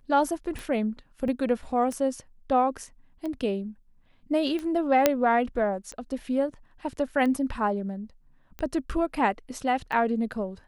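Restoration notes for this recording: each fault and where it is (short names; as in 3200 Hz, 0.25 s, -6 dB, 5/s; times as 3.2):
tick 45 rpm
1.28 gap 2.1 ms
5.06 pop -4 dBFS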